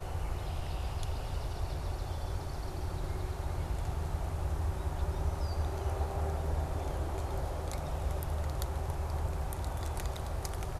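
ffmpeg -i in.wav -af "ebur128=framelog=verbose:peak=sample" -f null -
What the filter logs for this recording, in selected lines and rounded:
Integrated loudness:
  I:         -36.8 LUFS
  Threshold: -46.8 LUFS
Loudness range:
  LRA:         2.8 LU
  Threshold: -56.6 LUFS
  LRA low:   -38.3 LUFS
  LRA high:  -35.5 LUFS
Sample peak:
  Peak:      -19.5 dBFS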